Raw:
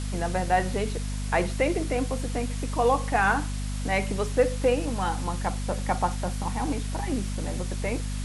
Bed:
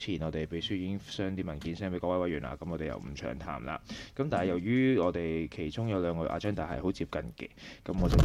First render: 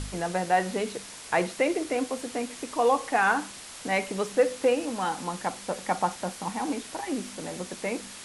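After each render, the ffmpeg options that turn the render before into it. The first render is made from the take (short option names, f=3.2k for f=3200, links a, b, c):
-af "bandreject=f=50:t=h:w=4,bandreject=f=100:t=h:w=4,bandreject=f=150:t=h:w=4,bandreject=f=200:t=h:w=4,bandreject=f=250:t=h:w=4"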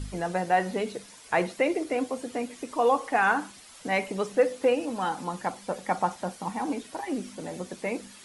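-af "afftdn=nr=10:nf=-43"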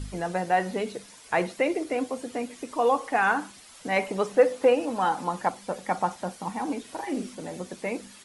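-filter_complex "[0:a]asettb=1/sr,asplit=3[a][b][c];[a]atrim=end=3.964[d];[b]atrim=start=3.96:end=5.49,asetpts=PTS-STARTPTS,afade=t=in:d=0.004:c=qsin,afade=t=out:st=1.526:d=0.004:c=qsin,equalizer=f=840:t=o:w=2:g=5[e];[c]atrim=start=5.486[f];[d][e]acrossfade=d=0.004:c1=hsin:c2=qsin[g];[g][f]acrossfade=d=0.004:c1=qsin:c2=hsin,asplit=3[h][i][j];[h]afade=t=out:st=6.86:d=0.02[k];[i]asplit=2[l][m];[m]adelay=43,volume=-6dB[n];[l][n]amix=inputs=2:normalize=0,afade=t=in:st=6.86:d=0.02,afade=t=out:st=7.34:d=0.02[o];[j]afade=t=in:st=7.34:d=0.02[p];[k][o][p]amix=inputs=3:normalize=0"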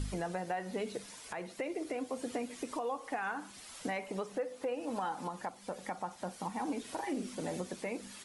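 -af "acompressor=threshold=-33dB:ratio=2.5,alimiter=level_in=2.5dB:limit=-24dB:level=0:latency=1:release=393,volume=-2.5dB"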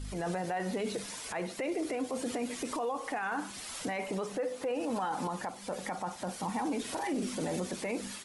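-af "alimiter=level_in=10dB:limit=-24dB:level=0:latency=1:release=14,volume=-10dB,dynaudnorm=f=110:g=3:m=8dB"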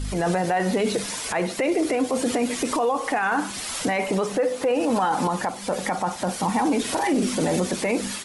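-af "volume=11.5dB"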